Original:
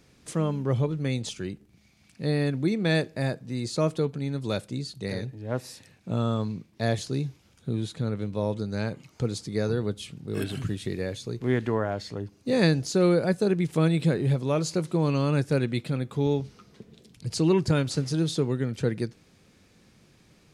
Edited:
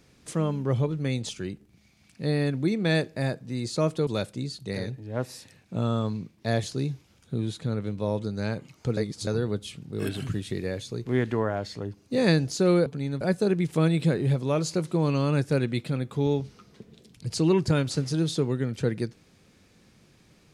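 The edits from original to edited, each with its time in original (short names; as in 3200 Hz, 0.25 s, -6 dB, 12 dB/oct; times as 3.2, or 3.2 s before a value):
4.07–4.42 move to 13.21
9.32–9.62 reverse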